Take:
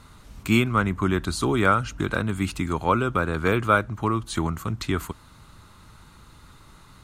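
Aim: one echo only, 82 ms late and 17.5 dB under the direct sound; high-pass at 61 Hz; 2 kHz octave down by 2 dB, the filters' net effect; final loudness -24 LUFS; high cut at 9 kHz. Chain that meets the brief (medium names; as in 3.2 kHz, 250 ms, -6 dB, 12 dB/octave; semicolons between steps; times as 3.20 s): high-pass 61 Hz; low-pass 9 kHz; peaking EQ 2 kHz -3 dB; delay 82 ms -17.5 dB; trim +0.5 dB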